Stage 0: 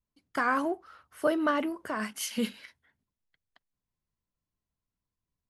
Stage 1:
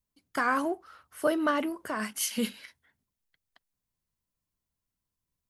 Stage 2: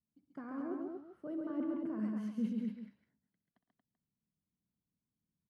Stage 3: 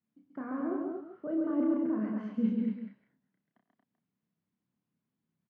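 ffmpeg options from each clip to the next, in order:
ffmpeg -i in.wav -af "highshelf=frequency=6100:gain=7.5" out.wav
ffmpeg -i in.wav -af "areverse,acompressor=threshold=-34dB:ratio=6,areverse,bandpass=frequency=200:width_type=q:width=2:csg=0,aecho=1:1:62|112|136|231|386:0.211|0.141|0.668|0.631|0.211,volume=4.5dB" out.wav
ffmpeg -i in.wav -filter_complex "[0:a]highpass=150,lowpass=2300,asplit=2[link_01][link_02];[link_02]adelay=31,volume=-4.5dB[link_03];[link_01][link_03]amix=inputs=2:normalize=0,volume=6dB" out.wav

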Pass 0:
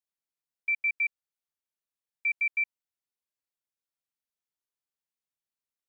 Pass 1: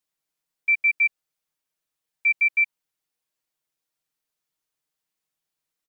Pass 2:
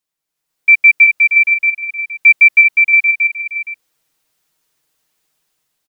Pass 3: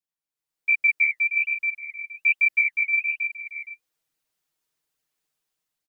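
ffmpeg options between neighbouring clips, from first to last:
ffmpeg -i in.wav -filter_complex "[0:a]aecho=1:1:6.4:0.65,asplit=2[link_01][link_02];[link_02]alimiter=level_in=2dB:limit=-24dB:level=0:latency=1:release=41,volume=-2dB,volume=2dB[link_03];[link_01][link_03]amix=inputs=2:normalize=0" out.wav
ffmpeg -i in.wav -af "dynaudnorm=framelen=150:gausssize=7:maxgain=12dB,aecho=1:1:360|630|832.5|984.4|1098:0.631|0.398|0.251|0.158|0.1,volume=2.5dB" out.wav
ffmpeg -i in.wav -af "flanger=delay=0.4:depth=8.7:regen=-48:speed=1.2:shape=sinusoidal,volume=-9dB" out.wav

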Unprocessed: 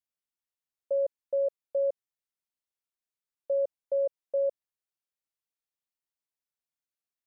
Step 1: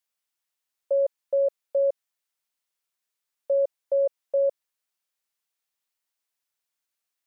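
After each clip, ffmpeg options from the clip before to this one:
ffmpeg -i in.wav -af "lowshelf=frequency=410:gain=-12,volume=9dB" out.wav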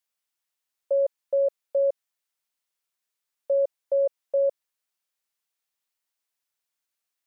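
ffmpeg -i in.wav -af anull out.wav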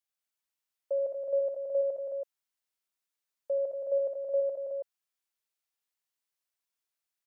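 ffmpeg -i in.wav -af "aecho=1:1:80|213|216|327:0.422|0.335|0.501|0.501,volume=-7dB" out.wav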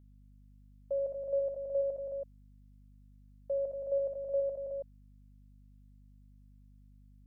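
ffmpeg -i in.wav -af "aeval=exprs='val(0)+0.002*(sin(2*PI*50*n/s)+sin(2*PI*2*50*n/s)/2+sin(2*PI*3*50*n/s)/3+sin(2*PI*4*50*n/s)/4+sin(2*PI*5*50*n/s)/5)':channel_layout=same,volume=-3dB" out.wav

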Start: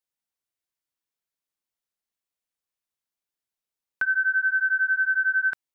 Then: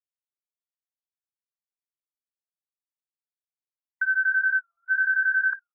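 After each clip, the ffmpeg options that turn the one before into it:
ffmpeg -i in.wav -filter_complex "[0:a]agate=range=-33dB:threshold=-27dB:ratio=3:detection=peak,asplit=6[link_01][link_02][link_03][link_04][link_05][link_06];[link_02]adelay=230,afreqshift=44,volume=-11dB[link_07];[link_03]adelay=460,afreqshift=88,volume=-17.9dB[link_08];[link_04]adelay=690,afreqshift=132,volume=-24.9dB[link_09];[link_05]adelay=920,afreqshift=176,volume=-31.8dB[link_10];[link_06]adelay=1150,afreqshift=220,volume=-38.7dB[link_11];[link_01][link_07][link_08][link_09][link_10][link_11]amix=inputs=6:normalize=0,afftfilt=real='re*between(b*sr/1024,940*pow(1900/940,0.5+0.5*sin(2*PI*1*pts/sr))/1.41,940*pow(1900/940,0.5+0.5*sin(2*PI*1*pts/sr))*1.41)':imag='im*between(b*sr/1024,940*pow(1900/940,0.5+0.5*sin(2*PI*1*pts/sr))/1.41,940*pow(1900/940,0.5+0.5*sin(2*PI*1*pts/sr))*1.41)':win_size=1024:overlap=0.75" out.wav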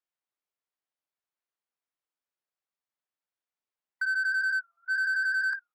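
ffmpeg -i in.wav -filter_complex "[0:a]asplit=2[link_01][link_02];[link_02]highpass=frequency=720:poles=1,volume=19dB,asoftclip=type=tanh:threshold=-15.5dB[link_03];[link_01][link_03]amix=inputs=2:normalize=0,lowpass=frequency=1200:poles=1,volume=-6dB,volume=-3.5dB" out.wav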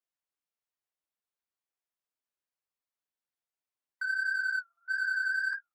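ffmpeg -i in.wav -af "flanger=delay=8.6:depth=6.6:regen=-17:speed=1.6:shape=triangular" out.wav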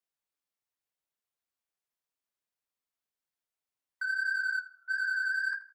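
ffmpeg -i in.wav -filter_complex "[0:a]asplit=2[link_01][link_02];[link_02]adelay=80,lowpass=frequency=4000:poles=1,volume=-15.5dB,asplit=2[link_03][link_04];[link_04]adelay=80,lowpass=frequency=4000:poles=1,volume=0.37,asplit=2[link_05][link_06];[link_06]adelay=80,lowpass=frequency=4000:poles=1,volume=0.37[link_07];[link_01][link_03][link_05][link_07]amix=inputs=4:normalize=0" out.wav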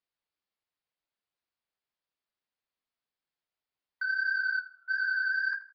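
ffmpeg -i in.wav -af "aresample=11025,aresample=44100,volume=1.5dB" out.wav

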